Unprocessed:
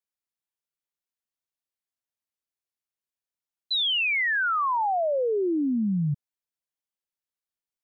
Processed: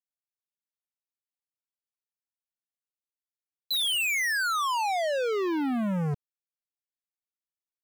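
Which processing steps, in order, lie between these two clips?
treble shelf 2.6 kHz +6 dB; waveshaping leveller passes 5; trim -8.5 dB

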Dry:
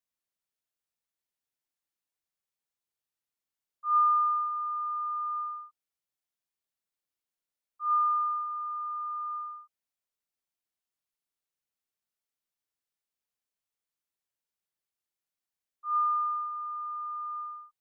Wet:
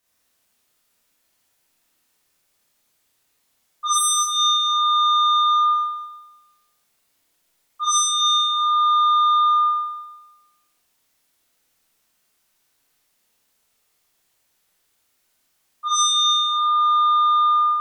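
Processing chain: sine folder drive 15 dB, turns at -18.5 dBFS; Schroeder reverb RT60 1.1 s, combs from 25 ms, DRR -7 dB; trim -3.5 dB

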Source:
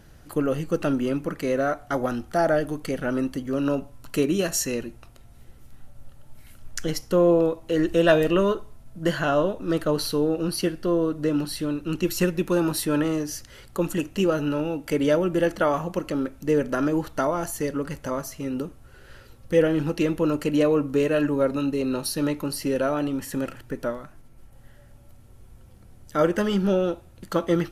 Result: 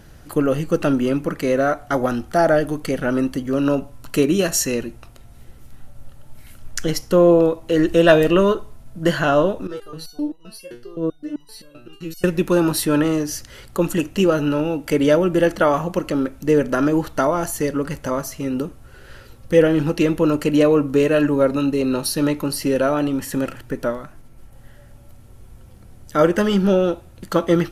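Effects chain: 9.67–12.24 s: resonator arpeggio 7.7 Hz 120–990 Hz; trim +5.5 dB

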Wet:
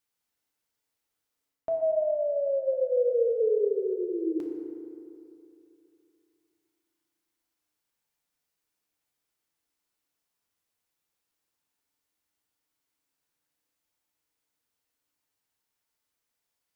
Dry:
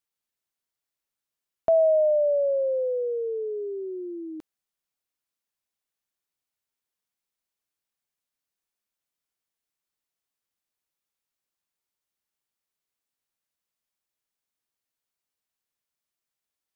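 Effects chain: reverse; compression 8:1, threshold -30 dBFS, peak gain reduction 12.5 dB; reverse; FDN reverb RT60 2.8 s, high-frequency decay 0.4×, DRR 0.5 dB; trim +2.5 dB

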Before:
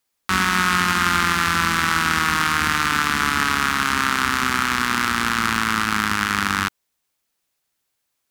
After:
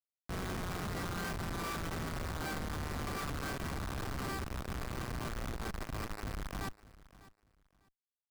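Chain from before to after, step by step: treble shelf 8.9 kHz +7 dB; band-stop 2.7 kHz, Q 8.7; level rider gain up to 12 dB; in parallel at -9.5 dB: saturation -14 dBFS, distortion -9 dB; on the sum: feedback comb 390 Hz, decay 0.23 s, harmonics all, mix 90%; Schmitt trigger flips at -27.5 dBFS; feedback delay 599 ms, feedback 22%, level -19 dB; trim -4.5 dB

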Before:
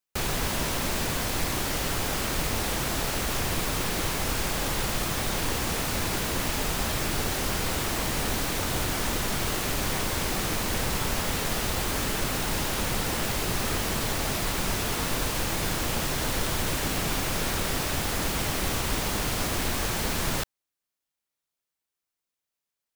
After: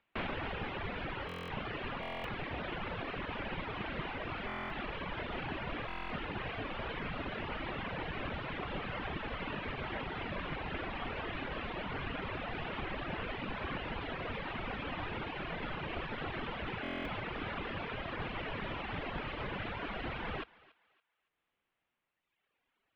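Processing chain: reverb removal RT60 1.8 s; upward compressor, threshold -52 dBFS; thinning echo 282 ms, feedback 34%, high-pass 870 Hz, level -20 dB; mistuned SSB -160 Hz 150–3200 Hz; buffer glitch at 1.27/2.01/4.47/5.87/16.82 s, samples 1024, times 9; trim -4 dB

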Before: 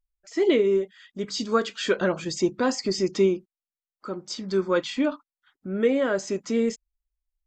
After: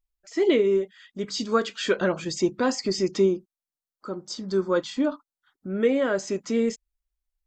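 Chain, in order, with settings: 3.20–5.70 s: peaking EQ 2.4 kHz -9.5 dB 0.77 oct

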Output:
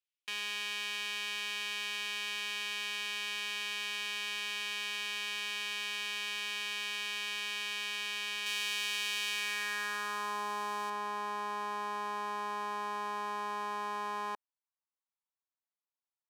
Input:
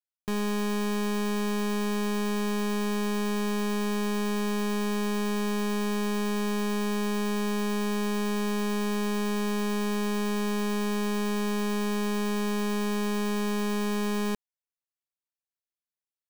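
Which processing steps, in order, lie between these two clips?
tilt EQ +3 dB/octave; band-pass sweep 2.7 kHz -> 960 Hz, 9.29–10.43 s; 8.46–10.90 s: treble shelf 3.7 kHz +7 dB; trim +3 dB

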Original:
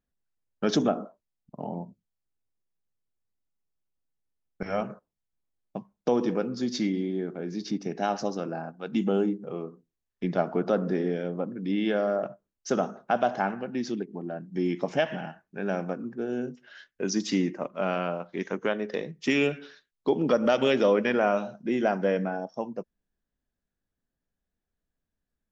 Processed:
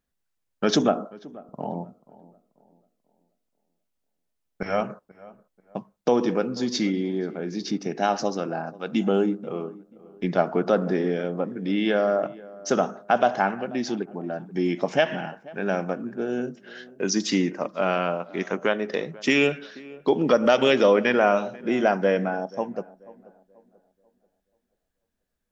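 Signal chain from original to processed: bass shelf 430 Hz -4.5 dB; on a send: tape echo 486 ms, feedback 40%, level -19 dB, low-pass 1.2 kHz; on the sum: trim +6 dB

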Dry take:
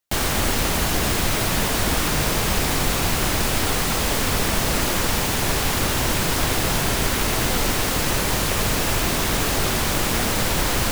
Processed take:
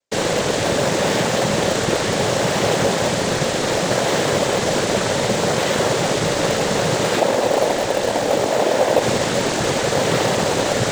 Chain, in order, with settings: 7.19–9.02 s: ring modulator 470 Hz; noise-vocoded speech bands 6; peaking EQ 550 Hz +12 dB 0.6 oct; in parallel at -10 dB: decimation with a swept rate 22×, swing 160% 0.66 Hz; on the sum: trim +1 dB

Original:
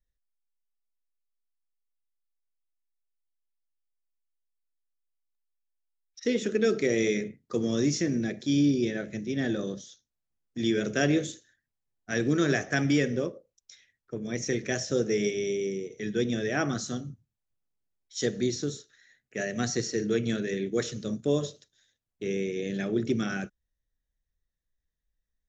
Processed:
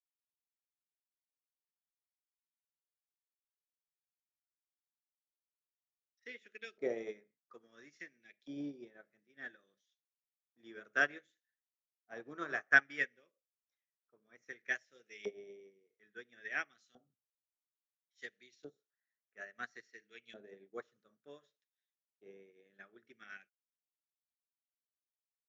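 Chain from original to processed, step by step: LFO band-pass saw up 0.59 Hz 690–2800 Hz; upward expansion 2.5:1, over -49 dBFS; trim +8.5 dB

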